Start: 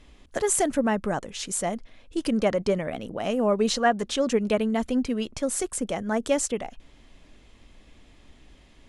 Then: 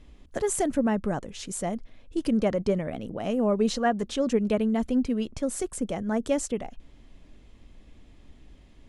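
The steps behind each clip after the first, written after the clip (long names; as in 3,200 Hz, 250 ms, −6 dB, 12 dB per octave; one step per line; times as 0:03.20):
low-shelf EQ 470 Hz +8.5 dB
level −6 dB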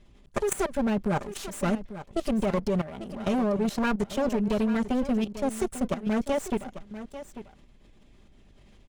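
lower of the sound and its delayed copy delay 5 ms
output level in coarse steps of 15 dB
single-tap delay 844 ms −13 dB
level +5.5 dB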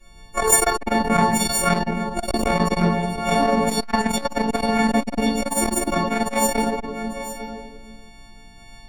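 every partial snapped to a pitch grid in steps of 4 semitones
convolution reverb RT60 1.4 s, pre-delay 3 ms, DRR −11 dB
saturating transformer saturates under 370 Hz
level −4 dB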